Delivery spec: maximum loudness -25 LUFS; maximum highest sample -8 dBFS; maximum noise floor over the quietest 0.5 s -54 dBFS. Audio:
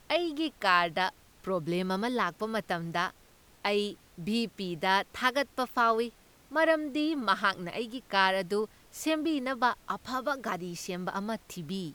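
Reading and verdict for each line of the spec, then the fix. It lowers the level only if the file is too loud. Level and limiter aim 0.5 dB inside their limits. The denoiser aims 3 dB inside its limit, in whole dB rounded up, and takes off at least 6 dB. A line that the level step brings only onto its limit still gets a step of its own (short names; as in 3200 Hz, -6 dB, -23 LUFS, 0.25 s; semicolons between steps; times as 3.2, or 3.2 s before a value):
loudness -30.5 LUFS: OK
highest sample -10.0 dBFS: OK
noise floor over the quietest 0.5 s -59 dBFS: OK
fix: none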